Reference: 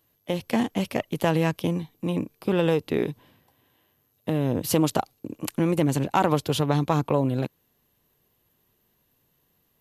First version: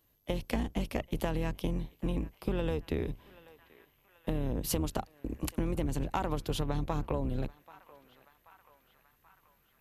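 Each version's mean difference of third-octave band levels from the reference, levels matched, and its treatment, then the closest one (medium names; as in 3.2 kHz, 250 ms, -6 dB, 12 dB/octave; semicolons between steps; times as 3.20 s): 4.0 dB: octave divider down 2 oct, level +2 dB; on a send: band-passed feedback delay 782 ms, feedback 73%, band-pass 1.7 kHz, level -23.5 dB; on the sum: compression 6:1, threshold -25 dBFS, peak gain reduction 10.5 dB; trim -3.5 dB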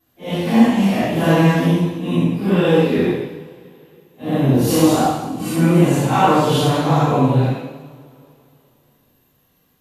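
7.0 dB: phase randomisation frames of 200 ms; treble shelf 8.2 kHz -4 dB; two-slope reverb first 0.93 s, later 3.1 s, from -21 dB, DRR -10 dB; trim -1.5 dB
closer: first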